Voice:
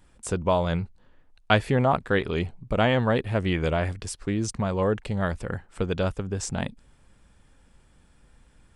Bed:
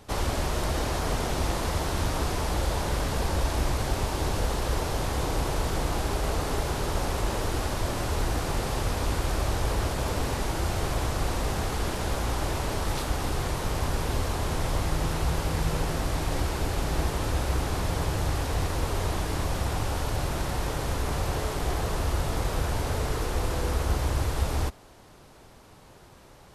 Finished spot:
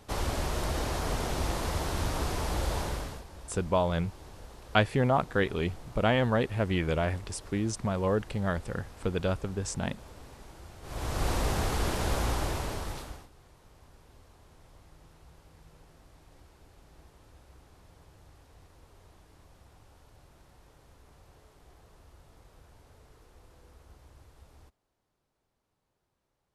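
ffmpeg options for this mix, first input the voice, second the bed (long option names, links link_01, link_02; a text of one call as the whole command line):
ffmpeg -i stem1.wav -i stem2.wav -filter_complex "[0:a]adelay=3250,volume=-3.5dB[link_01];[1:a]volume=17dB,afade=type=out:start_time=2.79:duration=0.45:silence=0.133352,afade=type=in:start_time=10.82:duration=0.48:silence=0.0944061,afade=type=out:start_time=12.23:duration=1.05:silence=0.0375837[link_02];[link_01][link_02]amix=inputs=2:normalize=0" out.wav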